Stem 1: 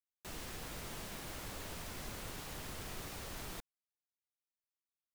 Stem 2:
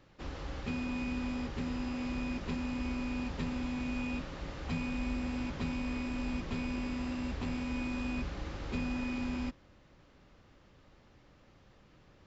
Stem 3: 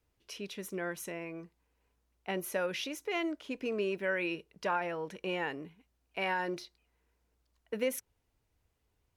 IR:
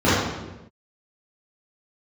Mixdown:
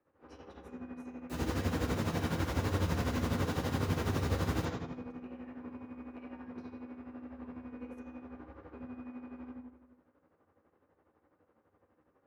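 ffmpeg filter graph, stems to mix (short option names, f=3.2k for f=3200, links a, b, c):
-filter_complex "[0:a]adelay=1050,volume=-3dB,asplit=2[a][b];[b]volume=-8dB[c];[1:a]acrossover=split=330 2100:gain=0.141 1 0.0794[d][e][f];[d][e][f]amix=inputs=3:normalize=0,acompressor=threshold=-42dB:ratio=6,volume=-16dB,asplit=2[g][h];[h]volume=-12.5dB[i];[2:a]lowpass=8k,acompressor=threshold=-44dB:ratio=6,volume=-17dB,asplit=2[j][k];[k]volume=-17.5dB[l];[3:a]atrim=start_sample=2205[m];[c][i][l]amix=inputs=3:normalize=0[n];[n][m]afir=irnorm=-1:irlink=0[o];[a][g][j][o]amix=inputs=4:normalize=0,tremolo=f=12:d=0.64"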